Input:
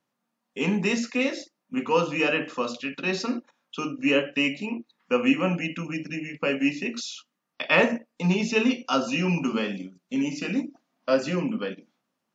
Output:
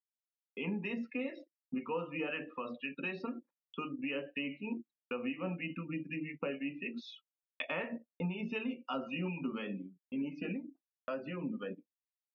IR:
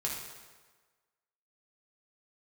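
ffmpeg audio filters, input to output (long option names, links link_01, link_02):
-filter_complex "[0:a]afftdn=noise_reduction=25:noise_floor=-35,agate=range=-43dB:threshold=-48dB:ratio=16:detection=peak,lowpass=frequency=3300:width=0.5412,lowpass=frequency=3300:width=1.3066,acompressor=threshold=-32dB:ratio=4,acrossover=split=1000[link_01][link_02];[link_01]aeval=exprs='val(0)*(1-0.5/2+0.5/2*cos(2*PI*4*n/s))':channel_layout=same[link_03];[link_02]aeval=exprs='val(0)*(1-0.5/2-0.5/2*cos(2*PI*4*n/s))':channel_layout=same[link_04];[link_03][link_04]amix=inputs=2:normalize=0,volume=-2dB"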